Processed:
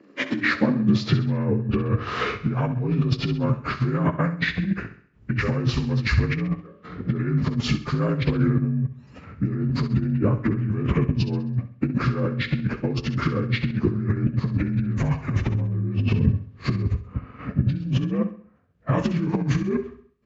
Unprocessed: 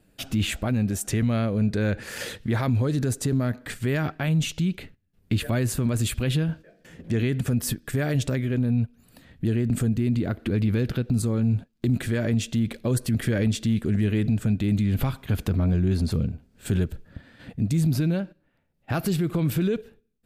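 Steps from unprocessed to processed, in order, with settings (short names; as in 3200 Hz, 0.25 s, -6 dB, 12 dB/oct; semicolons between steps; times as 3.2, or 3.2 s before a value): inharmonic rescaling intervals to 83%; LPF 2600 Hz 12 dB/oct; negative-ratio compressor -30 dBFS, ratio -1; on a send: feedback echo 66 ms, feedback 44%, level -10.5 dB; on the sum: high-pass sweep 310 Hz -> 61 Hz, 0.36–1.7; transient shaper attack +2 dB, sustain -3 dB; gain +5.5 dB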